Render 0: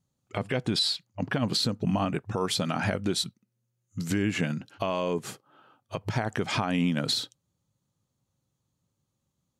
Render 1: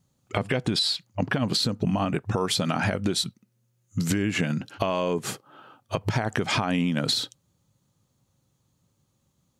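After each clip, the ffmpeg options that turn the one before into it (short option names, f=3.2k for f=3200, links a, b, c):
-af "acompressor=threshold=-30dB:ratio=6,volume=8.5dB"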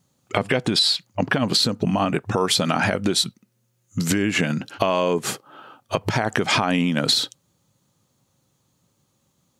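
-af "lowshelf=f=110:g=-12,volume=6dB"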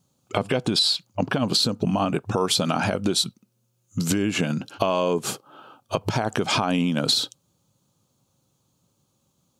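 -af "equalizer=f=1.9k:t=o:w=0.44:g=-10.5,volume=-1.5dB"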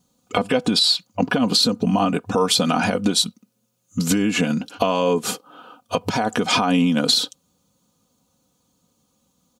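-af "aecho=1:1:4.1:0.66,volume=2dB"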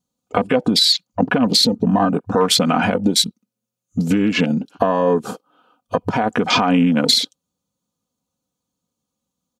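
-af "afwtdn=0.0398,volume=3dB"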